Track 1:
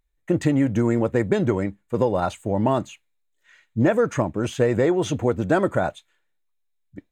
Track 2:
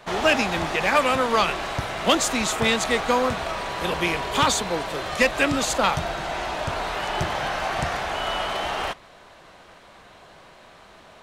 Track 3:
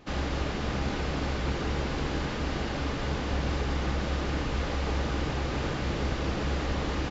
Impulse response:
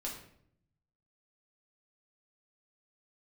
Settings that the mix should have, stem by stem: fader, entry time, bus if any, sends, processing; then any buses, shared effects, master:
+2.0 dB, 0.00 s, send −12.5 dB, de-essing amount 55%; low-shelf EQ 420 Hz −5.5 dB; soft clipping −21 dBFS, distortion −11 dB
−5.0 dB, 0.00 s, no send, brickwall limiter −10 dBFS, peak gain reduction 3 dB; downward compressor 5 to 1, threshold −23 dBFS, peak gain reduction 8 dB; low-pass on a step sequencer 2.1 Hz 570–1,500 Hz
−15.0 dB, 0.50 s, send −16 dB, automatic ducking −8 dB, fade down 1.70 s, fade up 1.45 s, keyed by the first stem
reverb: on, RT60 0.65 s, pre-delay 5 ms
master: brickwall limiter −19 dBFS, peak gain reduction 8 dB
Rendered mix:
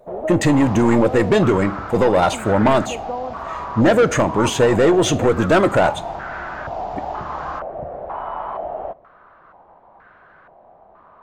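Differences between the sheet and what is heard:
stem 1 +2.0 dB → +11.0 dB
stem 3 −15.0 dB → −6.0 dB
master: missing brickwall limiter −19 dBFS, peak gain reduction 8 dB

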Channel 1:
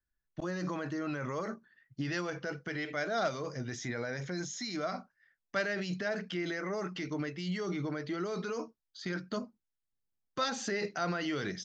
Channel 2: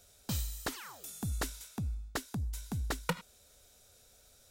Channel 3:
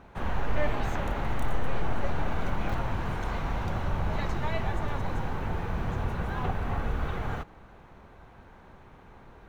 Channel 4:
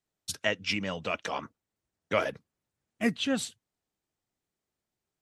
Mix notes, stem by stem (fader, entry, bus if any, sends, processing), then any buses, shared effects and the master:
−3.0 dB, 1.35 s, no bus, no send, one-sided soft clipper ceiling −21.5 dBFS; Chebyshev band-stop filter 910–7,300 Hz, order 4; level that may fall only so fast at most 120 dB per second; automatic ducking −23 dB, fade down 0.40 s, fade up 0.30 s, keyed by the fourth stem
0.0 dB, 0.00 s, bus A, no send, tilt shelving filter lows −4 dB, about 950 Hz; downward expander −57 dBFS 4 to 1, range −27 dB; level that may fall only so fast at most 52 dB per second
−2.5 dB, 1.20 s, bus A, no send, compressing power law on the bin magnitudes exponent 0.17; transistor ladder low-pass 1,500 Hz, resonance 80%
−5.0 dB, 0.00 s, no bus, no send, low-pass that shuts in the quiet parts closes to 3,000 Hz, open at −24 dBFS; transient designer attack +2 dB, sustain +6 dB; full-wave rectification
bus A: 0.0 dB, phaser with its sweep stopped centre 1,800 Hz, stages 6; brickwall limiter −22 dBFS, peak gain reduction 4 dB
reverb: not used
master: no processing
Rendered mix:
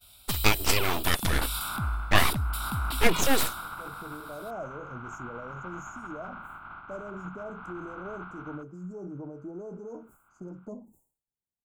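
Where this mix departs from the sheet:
stem 2 0.0 dB → +11.5 dB
stem 4 −5.0 dB → +7.0 dB

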